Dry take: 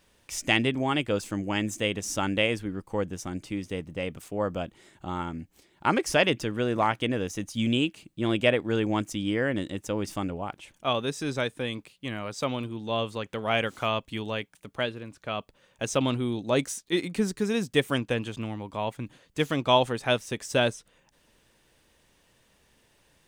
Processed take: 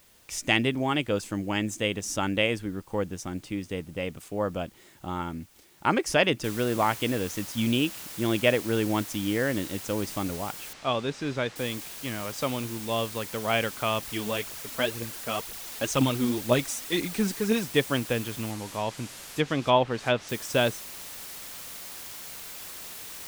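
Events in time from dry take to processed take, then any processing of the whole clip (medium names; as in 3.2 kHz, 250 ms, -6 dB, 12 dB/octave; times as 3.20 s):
6.44 s: noise floor step -60 dB -41 dB
10.73–11.56 s: distance through air 110 m
14.02–17.64 s: phaser 2 Hz, delay 4.7 ms, feedback 51%
18.50–20.29 s: low-pass that closes with the level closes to 2.6 kHz, closed at -18.5 dBFS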